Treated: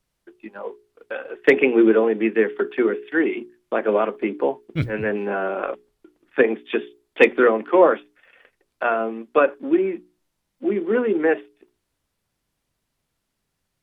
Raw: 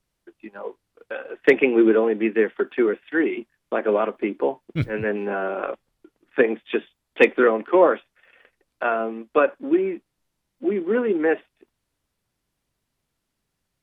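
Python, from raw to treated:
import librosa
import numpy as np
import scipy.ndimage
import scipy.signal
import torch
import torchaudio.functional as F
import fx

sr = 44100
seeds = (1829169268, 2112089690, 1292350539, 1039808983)

y = fx.hum_notches(x, sr, base_hz=60, count=7)
y = y * librosa.db_to_amplitude(1.5)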